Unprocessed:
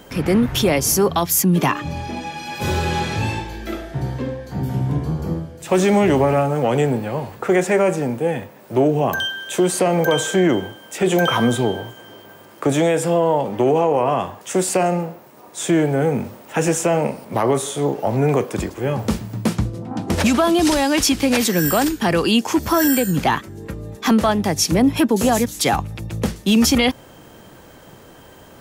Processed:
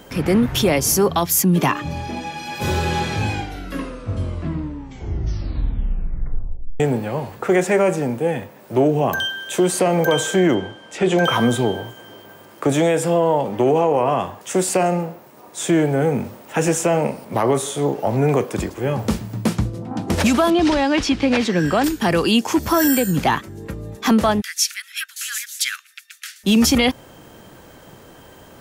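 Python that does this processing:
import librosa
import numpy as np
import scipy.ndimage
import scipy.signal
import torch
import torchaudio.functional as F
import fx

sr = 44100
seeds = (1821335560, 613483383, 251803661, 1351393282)

y = fx.lowpass(x, sr, hz=6000.0, slope=12, at=(10.54, 11.24))
y = fx.lowpass(y, sr, hz=3800.0, slope=12, at=(20.5, 21.84))
y = fx.steep_highpass(y, sr, hz=1400.0, slope=72, at=(24.4, 26.43), fade=0.02)
y = fx.edit(y, sr, fx.tape_stop(start_s=3.1, length_s=3.7), tone=tone)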